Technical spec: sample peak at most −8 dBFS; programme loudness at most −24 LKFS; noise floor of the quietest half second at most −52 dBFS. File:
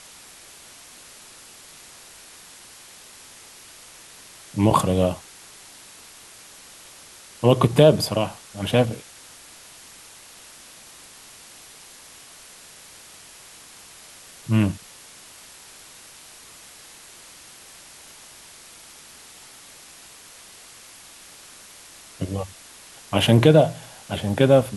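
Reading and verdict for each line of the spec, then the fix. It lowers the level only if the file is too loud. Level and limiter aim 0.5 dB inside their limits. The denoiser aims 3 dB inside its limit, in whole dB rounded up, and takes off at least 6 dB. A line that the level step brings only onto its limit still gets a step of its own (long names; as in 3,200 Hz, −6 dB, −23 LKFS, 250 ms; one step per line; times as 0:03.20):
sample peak −2.0 dBFS: out of spec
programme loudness −20.5 LKFS: out of spec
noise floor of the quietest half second −46 dBFS: out of spec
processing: broadband denoise 6 dB, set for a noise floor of −46 dBFS
level −4 dB
brickwall limiter −8.5 dBFS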